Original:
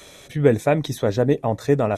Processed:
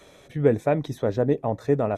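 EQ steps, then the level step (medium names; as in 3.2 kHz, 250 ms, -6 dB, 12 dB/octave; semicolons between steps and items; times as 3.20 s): bass shelf 190 Hz -3.5 dB; treble shelf 2.1 kHz -11.5 dB; -2.0 dB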